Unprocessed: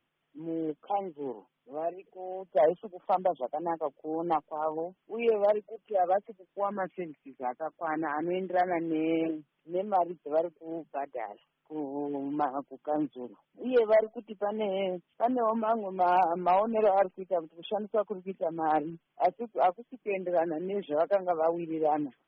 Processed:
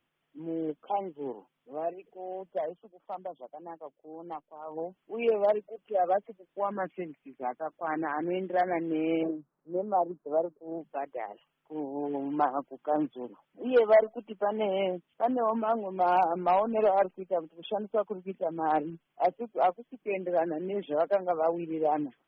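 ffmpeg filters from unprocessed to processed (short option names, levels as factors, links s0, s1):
-filter_complex "[0:a]asettb=1/sr,asplit=3[s0][s1][s2];[s0]atrim=end=9.234[s3];[s1]atrim=start=9.23:end=10.81,asetpts=PTS-STARTPTS,afade=t=in:d=0.004:c=qsin,afade=t=out:st=1.576:d=0.004:c=qsin,lowpass=f=1300:w=0.5412,lowpass=f=1300:w=1.3066[s4];[s2]atrim=start=10.806[s5];[s3][s4]acrossfade=d=0.004:c1=hsin:c2=qsin[s6];[s6][s5]acrossfade=d=0.004:c1=qsin:c2=hsin,asettb=1/sr,asplit=3[s7][s8][s9];[s7]atrim=end=12.034[s10];[s8]atrim=start=12.03:end=14.92,asetpts=PTS-STARTPTS,afade=t=in:d=0.004:c=qsin,afade=t=out:st=2.886:d=0.004:c=qsin,equalizer=f=1200:w=0.55:g=4[s11];[s9]atrim=start=14.916[s12];[s10][s11]acrossfade=d=0.004:c1=hsin:c2=qsin[s13];[s13][s12]acrossfade=d=0.004:c1=qsin:c2=hsin,asplit=3[s14][s15][s16];[s14]atrim=end=2.63,asetpts=PTS-STARTPTS,afade=t=out:st=2.46:d=0.17:silence=0.266073[s17];[s15]atrim=start=2.63:end=4.67,asetpts=PTS-STARTPTS,volume=0.266[s18];[s16]atrim=start=4.67,asetpts=PTS-STARTPTS,afade=t=in:d=0.17:silence=0.266073[s19];[s17][s18][s19]concat=n=3:v=0:a=1"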